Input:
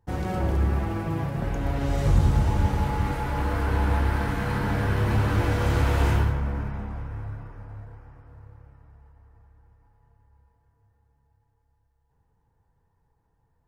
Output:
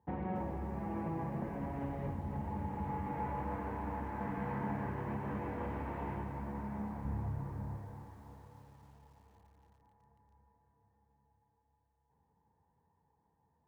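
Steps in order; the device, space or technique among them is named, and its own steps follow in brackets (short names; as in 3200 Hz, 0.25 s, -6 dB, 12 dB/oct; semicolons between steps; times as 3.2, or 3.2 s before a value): bass amplifier (compressor 5:1, threshold -31 dBFS, peak gain reduction 15 dB; speaker cabinet 70–2100 Hz, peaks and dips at 74 Hz -3 dB, 110 Hz -10 dB, 210 Hz +6 dB, 900 Hz +6 dB, 1400 Hz -9 dB); 7.05–7.77 low shelf 210 Hz +11.5 dB; lo-fi delay 0.282 s, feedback 55%, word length 10-bit, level -9.5 dB; gain -3.5 dB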